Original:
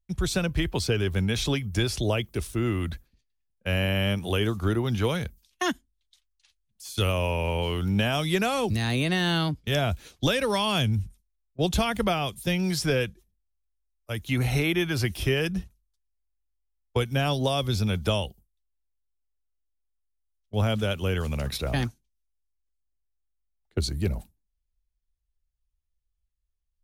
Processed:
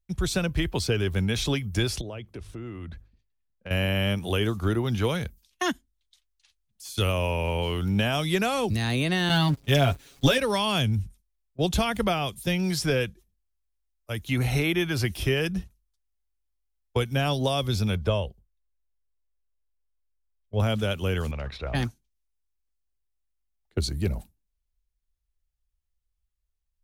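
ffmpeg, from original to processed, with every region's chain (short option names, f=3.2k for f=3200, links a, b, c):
-filter_complex "[0:a]asettb=1/sr,asplit=3[a][b][c];[a]atrim=end=2.014[d];[b]atrim=start=2.01:end=3.71,asetpts=PTS-STARTPTS,afade=t=in:d=0.004:c=qsin,afade=t=out:st=1.696:d=0.004:c=qsin,aemphasis=mode=reproduction:type=75fm,bandreject=f=50:t=h:w=6,bandreject=f=100:t=h:w=6,bandreject=f=150:t=h:w=6,acompressor=threshold=-37dB:ratio=3:attack=3.2:release=140:knee=1:detection=peak[e];[c]atrim=start=3.706[f];[d][e]acrossfade=d=0.004:c1=hsin:c2=qsin[g];[g][f]acrossfade=d=0.004:c1=qsin:c2=hsin,asettb=1/sr,asplit=3[h][i][j];[h]atrim=end=9.294[k];[i]atrim=start=9.29:end=10.38,asetpts=PTS-STARTPTS,afade=t=in:d=0.004:c=qsin,afade=t=out:st=1.086:d=0.004:c=qsin,aeval=exprs='val(0)+0.5*0.0126*sgn(val(0))':c=same,agate=range=-14dB:threshold=-30dB:ratio=16:release=100:detection=peak,aecho=1:1:7.3:0.76,atrim=end_sample=48069[l];[j]atrim=start=10.376[m];[k][l]acrossfade=d=0.004:c1=hsin:c2=qsin[n];[n][m]acrossfade=d=0.004:c1=qsin:c2=hsin,asettb=1/sr,asplit=3[o][p][q];[o]atrim=end=17.954[r];[p]atrim=start=17.95:end=20.6,asetpts=PTS-STARTPTS,afade=t=in:d=0.004:c=qsin,afade=t=out:st=2.646:d=0.004:c=qsin,lowpass=f=1.7k:p=1,aecho=1:1:1.9:0.36,atrim=end_sample=116865[s];[q]atrim=start=20.596[t];[r][s]acrossfade=d=0.004:c1=hsin:c2=qsin[u];[u][t]acrossfade=d=0.004:c1=qsin:c2=hsin,asettb=1/sr,asplit=3[v][w][x];[v]atrim=end=21.314[y];[w]atrim=start=21.31:end=21.75,asetpts=PTS-STARTPTS,afade=t=in:d=0.004:c=qsin,afade=t=out:st=0.436:d=0.004:c=qsin,lowpass=2.6k,equalizer=f=200:w=0.65:g=-9[z];[x]atrim=start=21.746[aa];[y][z]acrossfade=d=0.004:c1=hsin:c2=qsin[ab];[ab][aa]acrossfade=d=0.004:c1=qsin:c2=hsin"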